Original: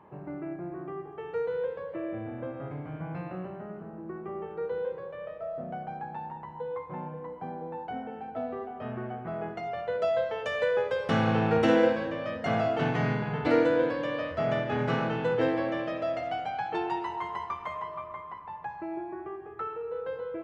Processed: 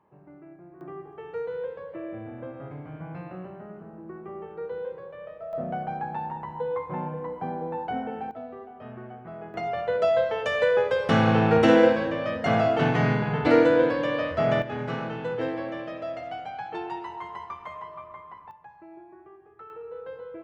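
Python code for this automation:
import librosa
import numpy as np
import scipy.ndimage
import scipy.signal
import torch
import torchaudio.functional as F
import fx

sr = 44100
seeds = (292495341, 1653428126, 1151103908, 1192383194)

y = fx.gain(x, sr, db=fx.steps((0.0, -11.0), (0.81, -1.5), (5.53, 6.0), (8.31, -5.0), (9.54, 5.0), (14.62, -3.0), (18.51, -11.0), (19.7, -4.0)))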